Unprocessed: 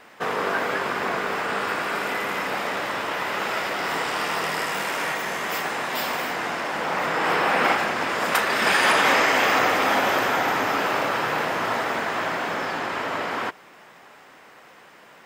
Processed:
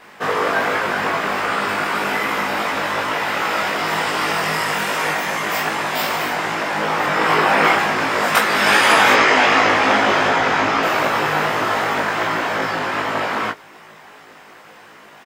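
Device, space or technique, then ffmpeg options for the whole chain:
double-tracked vocal: -filter_complex "[0:a]asettb=1/sr,asplit=3[a][b][c];[a]atrim=end=9.134[d];[b]atrim=start=9.13:end=10.83,asetpts=PTS-STARTPTS,afade=t=in:d=0.004:c=qsin,afade=t=out:st=1.696:d=0.004:c=qsin,lowpass=6.5k[e];[c]atrim=start=10.826[f];[d][e]acrossfade=d=0.004:c1=hsin:c2=qsin[g];[g][f]acrossfade=d=0.004:c1=qsin:c2=hsin,asplit=2[h][i];[i]adelay=19,volume=-3dB[j];[h][j]amix=inputs=2:normalize=0,flanger=delay=18:depth=2.3:speed=2.6,volume=7dB"

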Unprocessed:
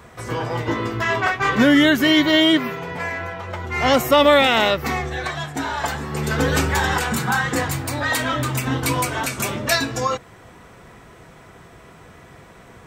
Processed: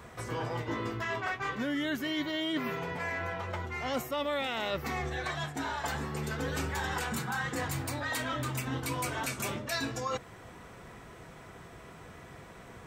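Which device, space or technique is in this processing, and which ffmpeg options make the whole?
compression on the reversed sound: -af "areverse,acompressor=threshold=-27dB:ratio=5,areverse,volume=-4.5dB"

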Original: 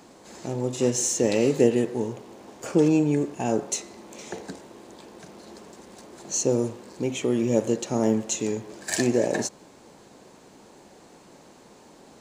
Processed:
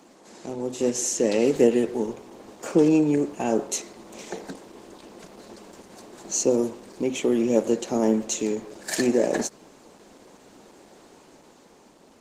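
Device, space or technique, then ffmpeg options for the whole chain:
video call: -af "highpass=f=170:w=0.5412,highpass=f=170:w=1.3066,dynaudnorm=f=330:g=7:m=3.5dB,volume=-1dB" -ar 48000 -c:a libopus -b:a 16k

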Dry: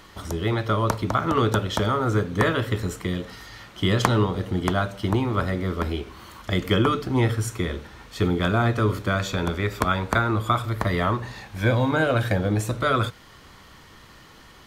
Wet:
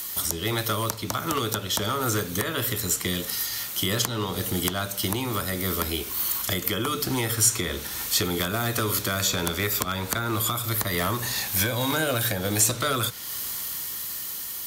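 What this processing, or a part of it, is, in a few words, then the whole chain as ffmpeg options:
FM broadcast chain: -filter_complex "[0:a]highpass=f=77:p=1,dynaudnorm=f=450:g=9:m=11.5dB,acrossover=split=470|1800|6500[a][b][c][d];[a]acompressor=threshold=-21dB:ratio=4[e];[b]acompressor=threshold=-24dB:ratio=4[f];[c]acompressor=threshold=-34dB:ratio=4[g];[d]acompressor=threshold=-58dB:ratio=4[h];[e][f][g][h]amix=inputs=4:normalize=0,aemphasis=mode=production:type=75fm,alimiter=limit=-15dB:level=0:latency=1:release=402,asoftclip=type=hard:threshold=-19dB,lowpass=f=15k:w=0.5412,lowpass=f=15k:w=1.3066,aemphasis=mode=production:type=75fm"

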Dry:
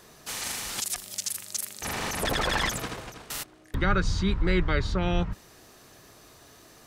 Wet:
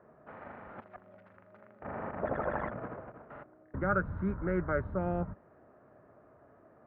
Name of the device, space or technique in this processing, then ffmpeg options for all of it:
bass cabinet: -filter_complex "[0:a]lowpass=1.2k,highpass=73,equalizer=f=230:t=q:w=4:g=3,equalizer=f=600:t=q:w=4:g=9,equalizer=f=1.4k:t=q:w=4:g=5,lowpass=f=2.1k:w=0.5412,lowpass=f=2.1k:w=1.3066,asettb=1/sr,asplit=3[a][b][c];[a]atrim=end=3.894[d];[b]atrim=start=3.89:end=4.81,asetpts=PTS-STARTPTS,afade=t=in:d=0.004:c=qsin,afade=t=out:st=0.916:d=0.004:c=qsin,equalizer=f=1.5k:w=2.6:g=5.5[e];[c]atrim=start=4.806[f];[d][e]acrossfade=d=0.004:c1=hsin:c2=qsin[g];[g][f]acrossfade=d=0.004:c1=qsin:c2=hsin,volume=-6.5dB"

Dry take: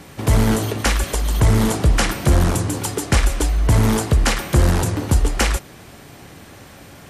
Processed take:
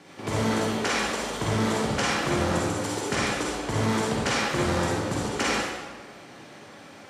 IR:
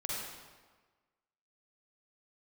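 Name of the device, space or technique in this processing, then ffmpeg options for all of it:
supermarket ceiling speaker: -filter_complex "[0:a]highpass=210,lowpass=6.8k[a];[1:a]atrim=start_sample=2205[b];[a][b]afir=irnorm=-1:irlink=0,volume=-5.5dB"

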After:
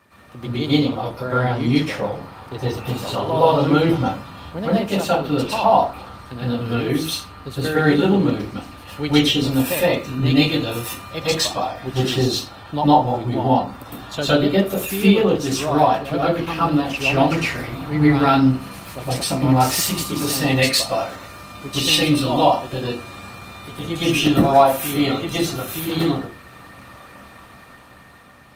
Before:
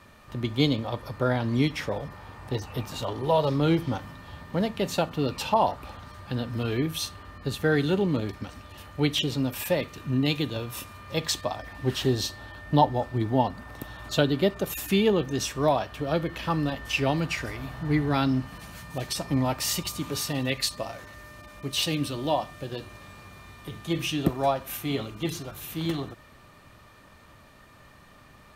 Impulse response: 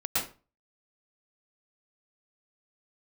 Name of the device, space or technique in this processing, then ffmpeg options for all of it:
far-field microphone of a smart speaker: -filter_complex "[0:a]asplit=3[a][b][c];[a]afade=t=out:st=1.34:d=0.02[d];[b]highpass=f=53:w=0.5412,highpass=f=53:w=1.3066,afade=t=in:st=1.34:d=0.02,afade=t=out:st=2.34:d=0.02[e];[c]afade=t=in:st=2.34:d=0.02[f];[d][e][f]amix=inputs=3:normalize=0[g];[1:a]atrim=start_sample=2205[h];[g][h]afir=irnorm=-1:irlink=0,highpass=f=140:p=1,dynaudnorm=f=390:g=9:m=12dB,volume=-1dB" -ar 48000 -c:a libopus -b:a 24k

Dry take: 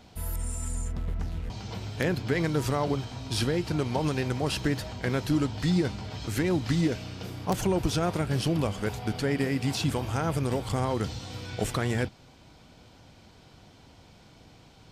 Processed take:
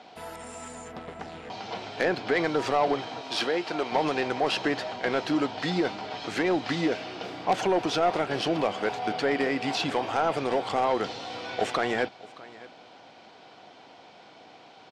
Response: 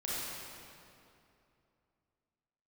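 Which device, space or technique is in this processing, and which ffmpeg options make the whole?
intercom: -filter_complex "[0:a]asettb=1/sr,asplit=3[a][b][c];[a]atrim=end=3.214[d];[b]atrim=start=3.21:end=3.92,asetpts=PTS-STARTPTS,afade=t=in:d=0.004:c=qsin,afade=t=out:st=0.706:d=0.004:c=qsin,highpass=f=350:p=1[e];[c]atrim=start=3.916[f];[d][e]acrossfade=d=0.004:c1=hsin:c2=qsin[g];[g][f]acrossfade=d=0.004:c1=qsin:c2=hsin,highpass=380,lowpass=3.9k,equalizer=f=730:t=o:w=0.31:g=6,aecho=1:1:620:0.0841,asoftclip=type=tanh:threshold=-21.5dB,volume=6.5dB"

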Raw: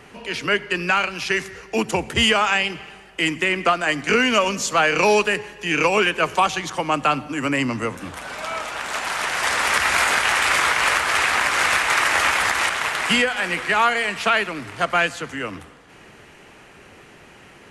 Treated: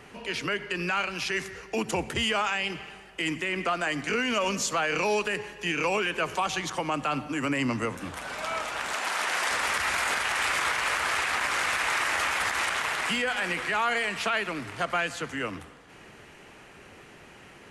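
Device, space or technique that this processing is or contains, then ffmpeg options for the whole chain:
clipper into limiter: -filter_complex "[0:a]asoftclip=type=hard:threshold=-7.5dB,alimiter=limit=-14.5dB:level=0:latency=1:release=55,asettb=1/sr,asplit=3[a][b][c];[a]atrim=end=8.944[d];[b]atrim=start=8.94:end=9.51,asetpts=PTS-STARTPTS,afade=t=in:d=0.004:c=qsin,afade=t=out:st=0.566:d=0.004:c=qsin,highpass=210[e];[c]atrim=start=9.506[f];[d][e]acrossfade=d=0.004:c1=hsin:c2=qsin[g];[g][f]acrossfade=d=0.004:c1=qsin:c2=hsin,volume=-3.5dB"

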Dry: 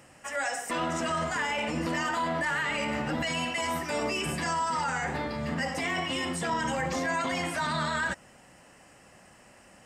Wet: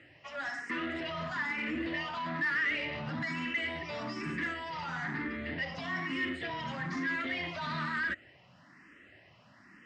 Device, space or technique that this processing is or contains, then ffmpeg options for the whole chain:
barber-pole phaser into a guitar amplifier: -filter_complex "[0:a]asplit=2[a][b];[b]afreqshift=1.1[c];[a][c]amix=inputs=2:normalize=1,asoftclip=type=tanh:threshold=-30.5dB,highpass=83,equalizer=f=110:t=q:w=4:g=5,equalizer=f=300:t=q:w=4:g=4,equalizer=f=500:t=q:w=4:g=-8,equalizer=f=810:t=q:w=4:g=-9,equalizer=f=1.9k:t=q:w=4:g=7,lowpass=f=4.5k:w=0.5412,lowpass=f=4.5k:w=1.3066"

